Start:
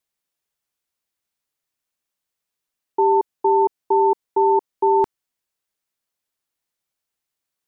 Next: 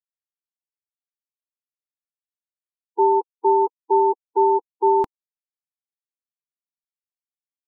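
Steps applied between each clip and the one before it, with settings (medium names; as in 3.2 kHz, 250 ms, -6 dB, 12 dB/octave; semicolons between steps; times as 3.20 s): expander on every frequency bin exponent 3; reverb removal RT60 0.67 s; trim +1 dB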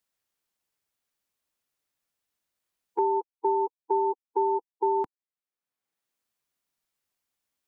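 three bands compressed up and down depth 70%; trim -8 dB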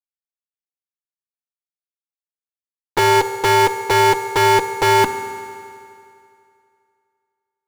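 fuzz box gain 49 dB, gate -46 dBFS; on a send at -7.5 dB: reverberation RT60 2.5 s, pre-delay 3 ms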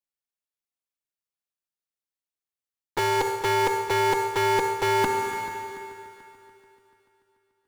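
reverse; compression, threshold -23 dBFS, peak gain reduction 10.5 dB; reverse; multi-head delay 145 ms, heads second and third, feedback 49%, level -17 dB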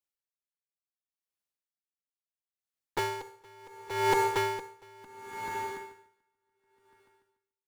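logarithmic tremolo 0.71 Hz, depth 31 dB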